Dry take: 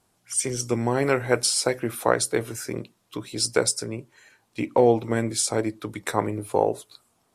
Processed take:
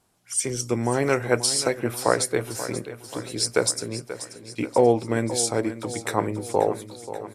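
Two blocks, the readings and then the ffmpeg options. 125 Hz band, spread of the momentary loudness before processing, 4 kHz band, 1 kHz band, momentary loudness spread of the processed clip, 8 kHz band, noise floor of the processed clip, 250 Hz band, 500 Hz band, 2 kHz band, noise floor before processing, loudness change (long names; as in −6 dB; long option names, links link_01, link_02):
+0.5 dB, 14 LU, +0.5 dB, +0.5 dB, 13 LU, +0.5 dB, −48 dBFS, +0.5 dB, +0.5 dB, +0.5 dB, −69 dBFS, 0.0 dB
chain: -af "aecho=1:1:534|1068|1602|2136|2670|3204:0.224|0.128|0.0727|0.0415|0.0236|0.0135"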